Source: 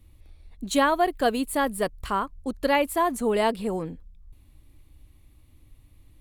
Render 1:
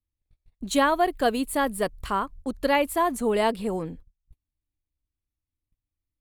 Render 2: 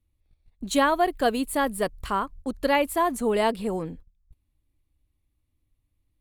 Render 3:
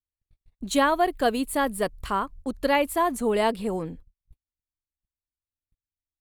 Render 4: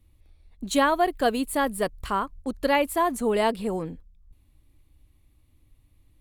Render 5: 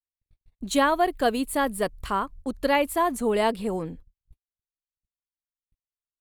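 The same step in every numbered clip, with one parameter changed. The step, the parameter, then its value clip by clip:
noise gate, range: −33, −19, −46, −6, −58 decibels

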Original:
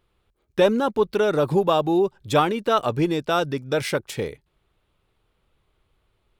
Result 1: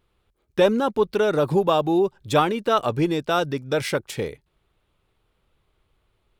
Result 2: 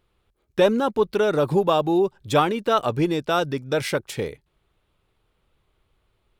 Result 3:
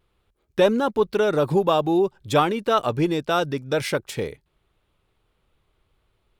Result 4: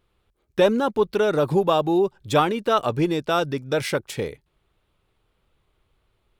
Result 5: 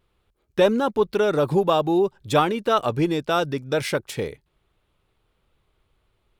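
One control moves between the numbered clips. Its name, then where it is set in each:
pitch vibrato, speed: 0.95, 3.3, 0.35, 1.7, 0.58 Hertz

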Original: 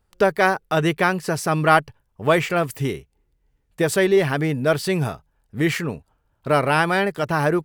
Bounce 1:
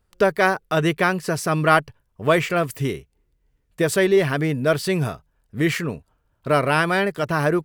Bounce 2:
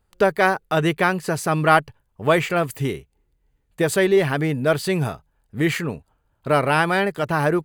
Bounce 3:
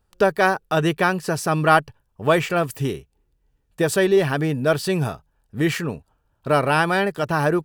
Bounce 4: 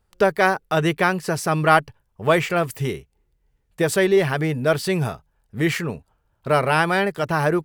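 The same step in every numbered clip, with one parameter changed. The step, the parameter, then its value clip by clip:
notch filter, centre frequency: 830, 5,500, 2,100, 280 Hertz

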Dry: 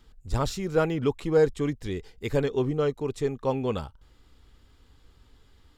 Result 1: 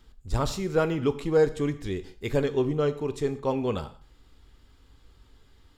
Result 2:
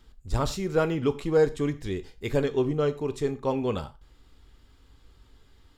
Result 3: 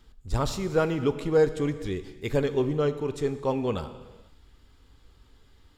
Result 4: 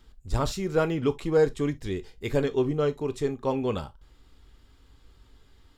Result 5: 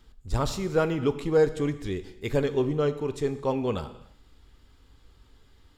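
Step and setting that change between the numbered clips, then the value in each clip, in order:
reverb whose tail is shaped and stops, gate: 210, 140, 530, 90, 350 milliseconds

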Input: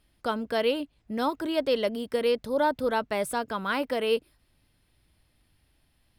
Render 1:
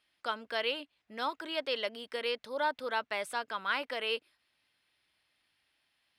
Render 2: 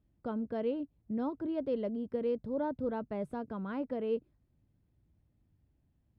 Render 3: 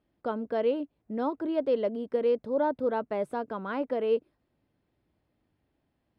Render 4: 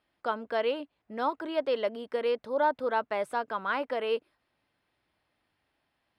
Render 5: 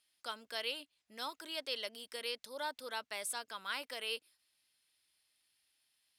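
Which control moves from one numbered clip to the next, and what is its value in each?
resonant band-pass, frequency: 2,500, 130, 380, 1,000, 6,900 Hertz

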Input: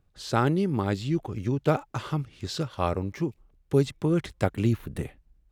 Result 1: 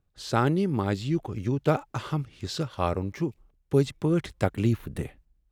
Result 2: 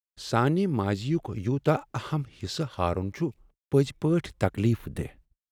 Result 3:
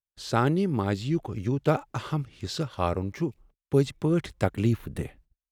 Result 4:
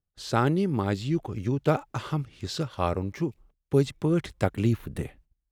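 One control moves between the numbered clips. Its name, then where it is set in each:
noise gate, range: −6, −59, −38, −19 decibels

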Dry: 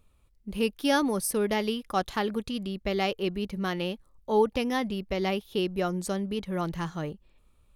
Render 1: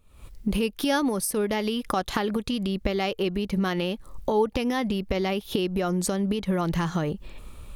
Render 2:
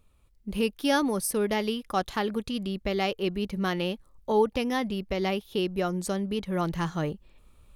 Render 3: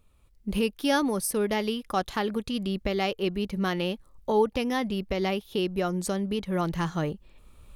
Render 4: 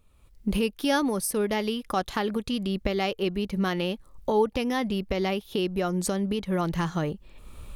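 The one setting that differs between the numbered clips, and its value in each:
camcorder AGC, rising by: 84, 5.1, 13, 31 dB per second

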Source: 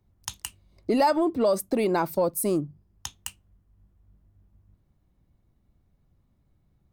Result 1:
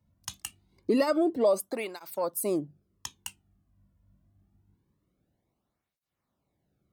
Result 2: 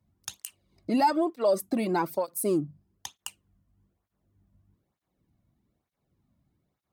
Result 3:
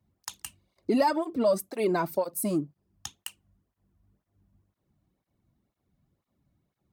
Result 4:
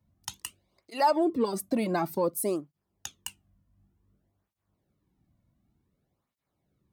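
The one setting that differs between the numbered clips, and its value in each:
through-zero flanger with one copy inverted, nulls at: 0.25, 1.1, 2, 0.55 Hertz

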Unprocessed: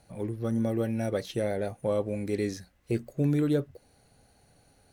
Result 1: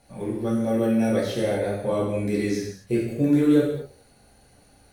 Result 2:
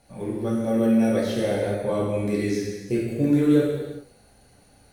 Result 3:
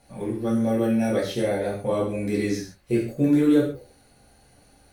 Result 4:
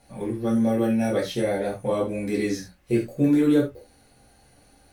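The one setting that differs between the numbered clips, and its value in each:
reverb whose tail is shaped and stops, gate: 290, 450, 180, 120 milliseconds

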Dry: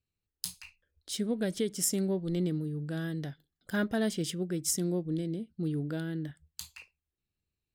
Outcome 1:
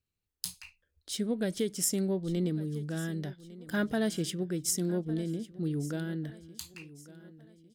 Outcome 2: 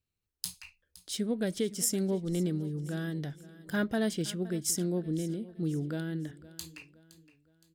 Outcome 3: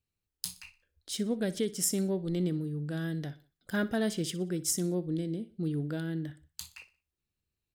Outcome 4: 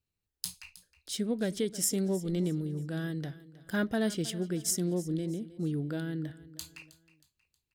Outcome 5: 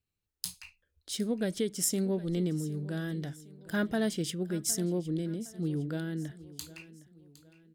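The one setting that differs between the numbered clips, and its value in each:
repeating echo, delay time: 1,153, 516, 61, 316, 761 milliseconds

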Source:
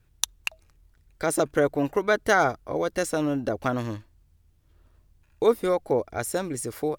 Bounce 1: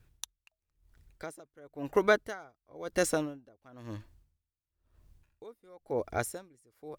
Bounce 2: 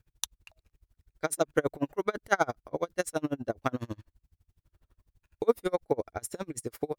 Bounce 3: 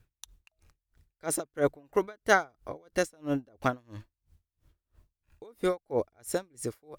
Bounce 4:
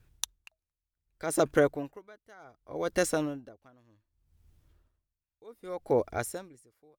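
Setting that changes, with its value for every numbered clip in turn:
tremolo with a sine in dB, speed: 0.98, 12, 3, 0.66 Hertz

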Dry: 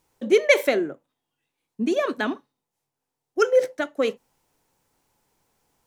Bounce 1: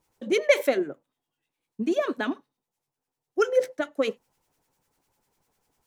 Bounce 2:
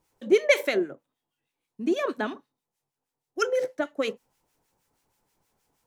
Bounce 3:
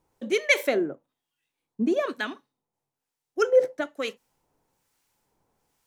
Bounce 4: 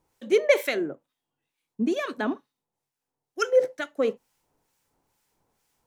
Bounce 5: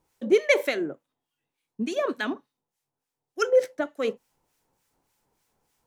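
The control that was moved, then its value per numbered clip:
two-band tremolo in antiphase, speed: 10, 6.3, 1.1, 2.2, 3.4 Hertz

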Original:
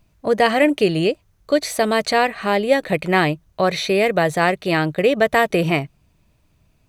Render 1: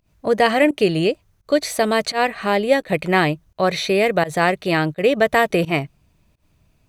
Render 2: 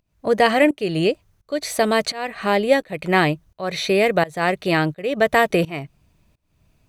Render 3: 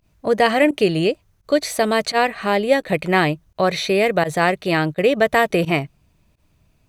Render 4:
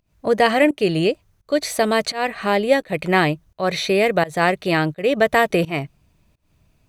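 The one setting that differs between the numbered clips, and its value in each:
fake sidechain pumping, release: 133, 429, 73, 245 milliseconds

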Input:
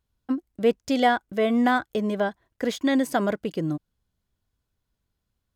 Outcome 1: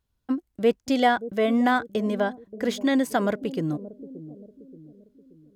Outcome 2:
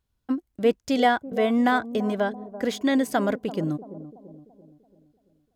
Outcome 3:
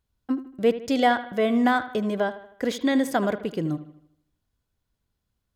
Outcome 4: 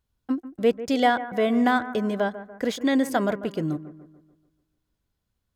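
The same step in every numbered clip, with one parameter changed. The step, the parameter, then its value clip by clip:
bucket-brigade delay, delay time: 577, 337, 78, 145 milliseconds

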